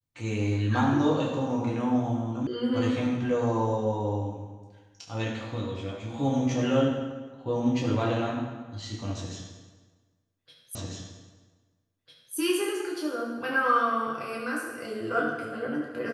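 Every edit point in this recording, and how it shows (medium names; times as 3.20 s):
2.47 s: sound stops dead
10.75 s: repeat of the last 1.6 s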